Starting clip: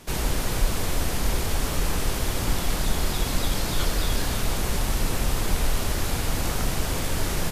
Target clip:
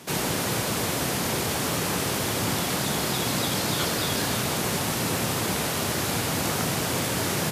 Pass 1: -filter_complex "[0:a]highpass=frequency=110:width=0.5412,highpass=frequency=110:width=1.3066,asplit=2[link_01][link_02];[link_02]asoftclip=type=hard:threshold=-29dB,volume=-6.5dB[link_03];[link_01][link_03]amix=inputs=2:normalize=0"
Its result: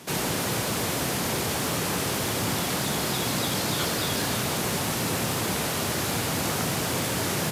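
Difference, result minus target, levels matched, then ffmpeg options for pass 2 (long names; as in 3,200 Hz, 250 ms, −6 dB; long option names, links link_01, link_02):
hard clipping: distortion +17 dB
-filter_complex "[0:a]highpass=frequency=110:width=0.5412,highpass=frequency=110:width=1.3066,asplit=2[link_01][link_02];[link_02]asoftclip=type=hard:threshold=-21.5dB,volume=-6.5dB[link_03];[link_01][link_03]amix=inputs=2:normalize=0"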